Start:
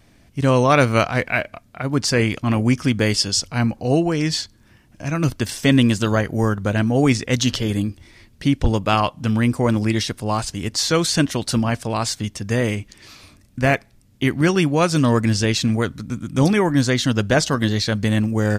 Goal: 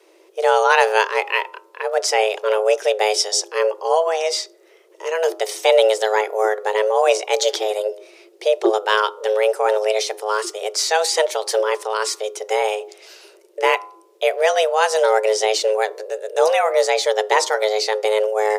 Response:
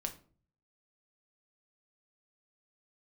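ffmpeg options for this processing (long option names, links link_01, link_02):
-filter_complex "[0:a]bandreject=frequency=99.35:width_type=h:width=4,bandreject=frequency=198.7:width_type=h:width=4,bandreject=frequency=298.05:width_type=h:width=4,bandreject=frequency=397.4:width_type=h:width=4,bandreject=frequency=496.75:width_type=h:width=4,bandreject=frequency=596.1:width_type=h:width=4,bandreject=frequency=695.45:width_type=h:width=4,bandreject=frequency=794.8:width_type=h:width=4,bandreject=frequency=894.15:width_type=h:width=4,bandreject=frequency=993.5:width_type=h:width=4,bandreject=frequency=1092.85:width_type=h:width=4,afreqshift=320,asplit=2[link_01][link_02];[1:a]atrim=start_sample=2205[link_03];[link_02][link_03]afir=irnorm=-1:irlink=0,volume=-14.5dB[link_04];[link_01][link_04]amix=inputs=2:normalize=0,volume=-1dB"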